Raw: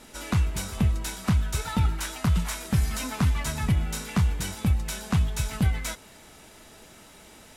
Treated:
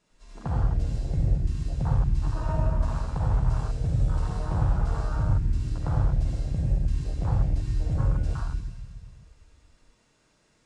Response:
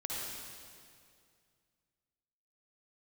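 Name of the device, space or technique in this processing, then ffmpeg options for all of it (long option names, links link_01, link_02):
slowed and reverbed: -filter_complex "[0:a]asetrate=31311,aresample=44100[link_01];[1:a]atrim=start_sample=2205[link_02];[link_01][link_02]afir=irnorm=-1:irlink=0,afwtdn=0.0316,volume=-2.5dB"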